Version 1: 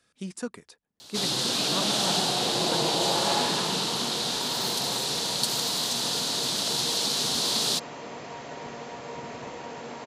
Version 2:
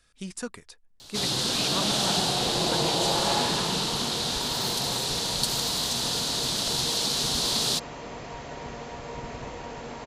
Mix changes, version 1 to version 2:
speech: add tilt shelf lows -3.5 dB, about 770 Hz; master: remove HPF 160 Hz 12 dB/oct

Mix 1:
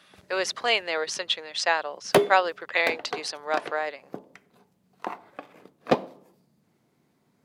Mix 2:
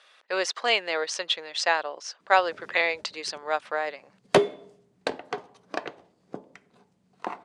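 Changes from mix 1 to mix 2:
background: entry +2.20 s; master: add steep low-pass 9400 Hz 36 dB/oct

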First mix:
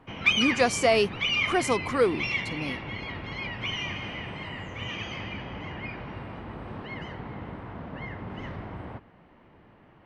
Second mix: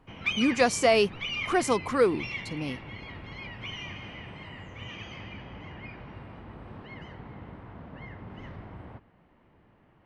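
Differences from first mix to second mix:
background -7.0 dB; master: add low shelf 140 Hz +4 dB

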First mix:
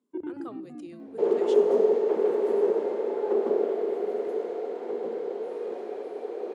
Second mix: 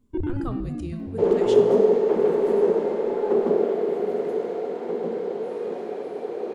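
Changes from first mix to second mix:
speech: send +10.5 dB; first sound: remove air absorption 420 m; master: remove ladder high-pass 240 Hz, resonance 20%

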